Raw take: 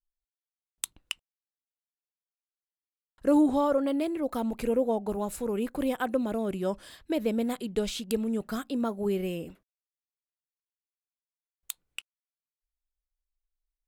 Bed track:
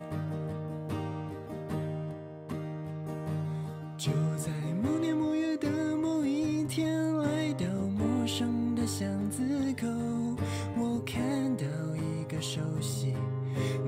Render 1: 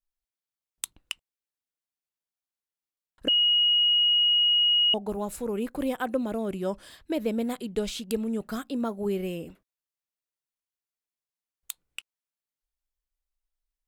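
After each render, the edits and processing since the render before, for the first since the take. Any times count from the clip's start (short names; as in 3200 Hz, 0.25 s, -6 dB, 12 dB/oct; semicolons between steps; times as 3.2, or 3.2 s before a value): 3.28–4.94 bleep 2890 Hz -18.5 dBFS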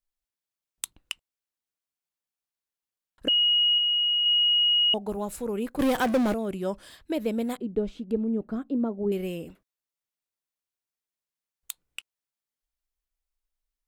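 3.78–4.26 passive tone stack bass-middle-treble 10-0-10; 5.79–6.34 power-law curve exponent 0.5; 7.57–9.12 EQ curve 170 Hz 0 dB, 290 Hz +5 dB, 14000 Hz -29 dB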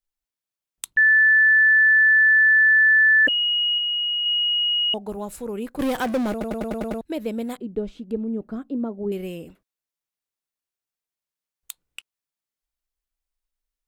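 0.97–3.27 bleep 1750 Hz -12 dBFS; 6.31 stutter in place 0.10 s, 7 plays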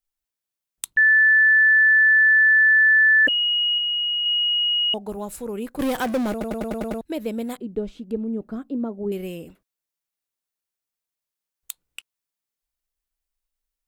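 high shelf 7700 Hz +4 dB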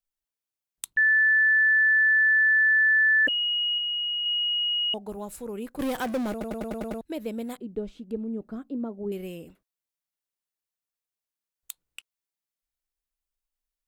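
gain -5 dB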